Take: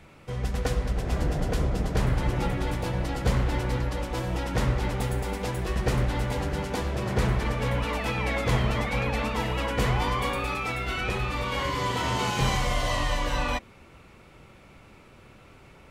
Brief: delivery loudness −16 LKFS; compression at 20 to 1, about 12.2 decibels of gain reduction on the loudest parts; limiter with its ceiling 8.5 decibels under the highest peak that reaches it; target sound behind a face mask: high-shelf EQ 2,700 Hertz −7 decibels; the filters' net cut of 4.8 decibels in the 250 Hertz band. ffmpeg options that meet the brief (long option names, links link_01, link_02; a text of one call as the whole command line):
ffmpeg -i in.wav -af "equalizer=frequency=250:width_type=o:gain=-7,acompressor=threshold=-32dB:ratio=20,alimiter=level_in=7dB:limit=-24dB:level=0:latency=1,volume=-7dB,highshelf=frequency=2700:gain=-7,volume=25.5dB" out.wav